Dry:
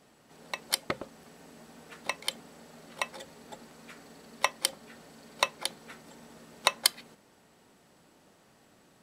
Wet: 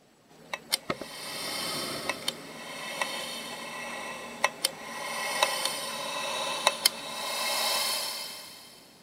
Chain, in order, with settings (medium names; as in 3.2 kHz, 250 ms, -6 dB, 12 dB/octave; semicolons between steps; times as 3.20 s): coarse spectral quantiser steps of 15 dB; swelling reverb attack 1050 ms, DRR -1.5 dB; trim +1.5 dB